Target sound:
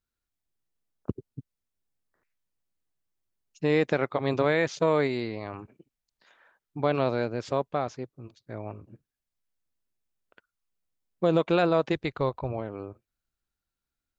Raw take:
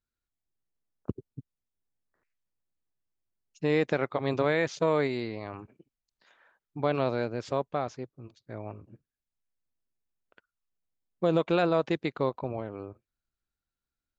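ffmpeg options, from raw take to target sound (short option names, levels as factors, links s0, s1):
-filter_complex "[0:a]asplit=3[s0][s1][s2];[s0]afade=t=out:st=11.92:d=0.02[s3];[s1]asubboost=boost=6.5:cutoff=79,afade=t=in:st=11.92:d=0.02,afade=t=out:st=12.51:d=0.02[s4];[s2]afade=t=in:st=12.51:d=0.02[s5];[s3][s4][s5]amix=inputs=3:normalize=0,volume=1.26"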